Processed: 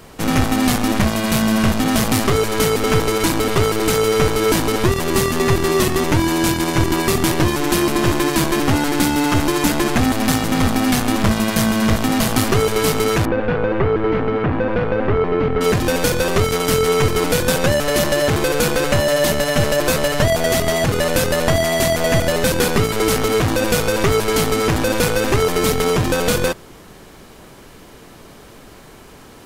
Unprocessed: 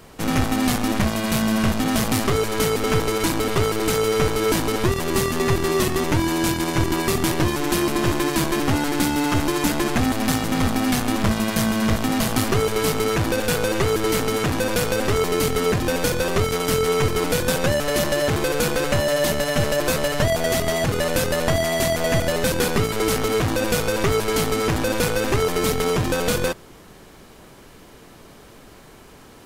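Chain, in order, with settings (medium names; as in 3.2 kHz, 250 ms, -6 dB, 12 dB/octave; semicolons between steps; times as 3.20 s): 13.25–15.61 s: Bessel low-pass 1.6 kHz, order 4; trim +4 dB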